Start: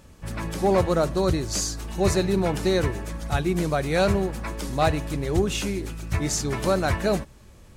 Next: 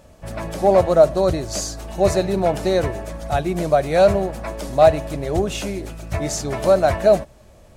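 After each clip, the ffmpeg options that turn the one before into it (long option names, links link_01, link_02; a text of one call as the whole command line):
ffmpeg -i in.wav -af "equalizer=frequency=640:width=2.8:gain=14" out.wav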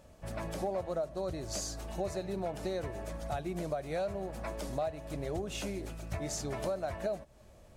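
ffmpeg -i in.wav -af "acompressor=threshold=-24dB:ratio=5,volume=-9dB" out.wav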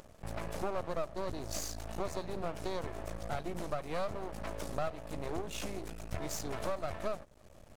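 ffmpeg -i in.wav -af "acompressor=mode=upward:threshold=-50dB:ratio=2.5,aeval=exprs='max(val(0),0)':channel_layout=same,volume=2.5dB" out.wav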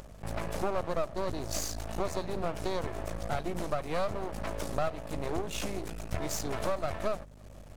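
ffmpeg -i in.wav -af "aeval=exprs='val(0)+0.00178*(sin(2*PI*50*n/s)+sin(2*PI*2*50*n/s)/2+sin(2*PI*3*50*n/s)/3+sin(2*PI*4*50*n/s)/4+sin(2*PI*5*50*n/s)/5)':channel_layout=same,volume=4.5dB" out.wav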